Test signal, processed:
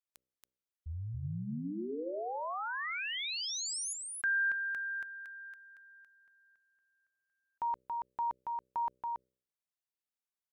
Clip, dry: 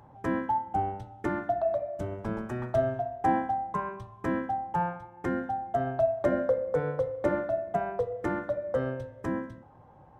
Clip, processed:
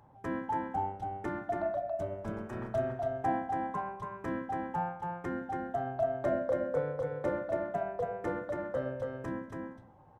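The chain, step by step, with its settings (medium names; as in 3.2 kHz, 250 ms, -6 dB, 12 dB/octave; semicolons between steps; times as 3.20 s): de-hum 63.41 Hz, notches 9; on a send: delay 279 ms -3.5 dB; on the sum: trim -6 dB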